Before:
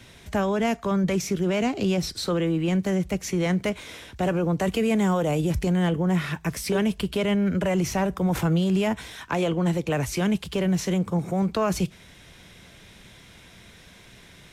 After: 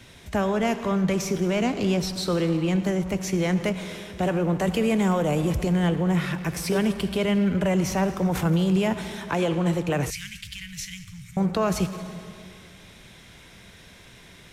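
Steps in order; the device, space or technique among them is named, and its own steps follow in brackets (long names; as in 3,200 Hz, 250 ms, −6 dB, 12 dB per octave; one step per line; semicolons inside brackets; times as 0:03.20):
saturated reverb return (on a send at −6 dB: convolution reverb RT60 1.9 s, pre-delay 63 ms + soft clipping −24.5 dBFS, distortion −10 dB)
0:10.10–0:11.37: on the sum: elliptic band-stop filter 110–2,000 Hz, stop band 70 dB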